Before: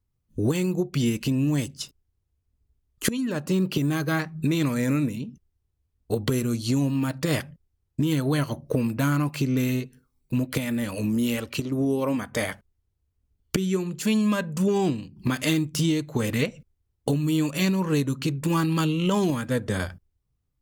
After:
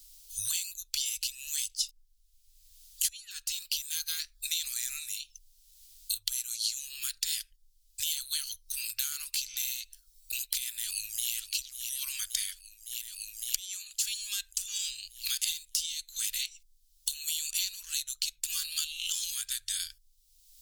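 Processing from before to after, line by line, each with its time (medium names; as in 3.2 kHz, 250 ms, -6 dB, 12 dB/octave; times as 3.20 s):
10.68–11.33 s: echo throw 560 ms, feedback 70%, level -12.5 dB
whole clip: inverse Chebyshev band-stop 150–780 Hz, stop band 80 dB; high-order bell 950 Hz +9.5 dB; three bands compressed up and down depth 100%; trim +7 dB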